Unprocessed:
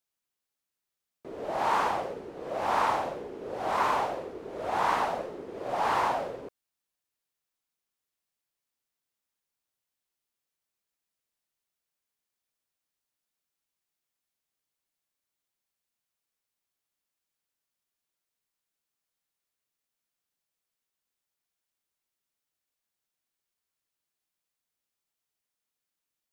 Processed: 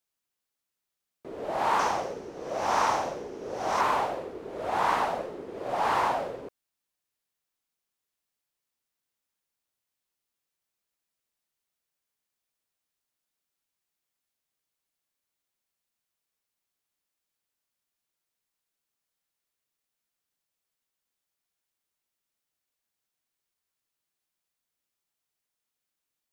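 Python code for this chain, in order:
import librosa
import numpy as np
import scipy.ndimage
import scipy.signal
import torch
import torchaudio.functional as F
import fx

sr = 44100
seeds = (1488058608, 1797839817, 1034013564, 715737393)

y = fx.peak_eq(x, sr, hz=5900.0, db=11.5, octaves=0.47, at=(1.79, 3.81))
y = y * 10.0 ** (1.0 / 20.0)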